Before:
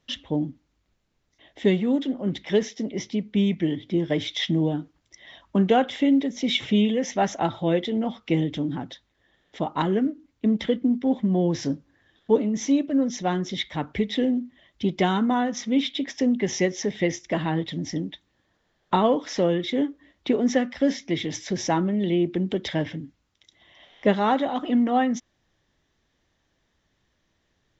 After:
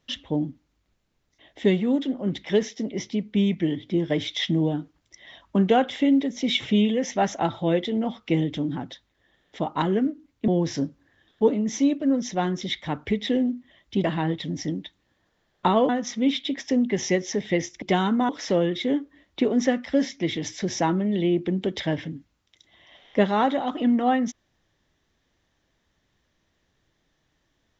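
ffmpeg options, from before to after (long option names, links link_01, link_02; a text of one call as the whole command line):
ffmpeg -i in.wav -filter_complex "[0:a]asplit=6[link_01][link_02][link_03][link_04][link_05][link_06];[link_01]atrim=end=10.482[link_07];[link_02]atrim=start=11.358:end=14.922[link_08];[link_03]atrim=start=17.318:end=19.172[link_09];[link_04]atrim=start=15.388:end=17.322[link_10];[link_05]atrim=start=14.918:end=15.392[link_11];[link_06]atrim=start=19.168[link_12];[link_07][link_08]acrossfade=duration=0.004:curve1=hsin:curve2=hsin[link_13];[link_13][link_09]acrossfade=duration=0.004:curve1=hsin:curve2=hsin[link_14];[link_14][link_10]acrossfade=duration=0.004:curve1=hsin:curve2=hsin[link_15];[link_15][link_11]acrossfade=duration=0.004:curve1=hsin:curve2=hsin[link_16];[link_16][link_12]acrossfade=duration=0.004:curve1=hsin:curve2=hsin" out.wav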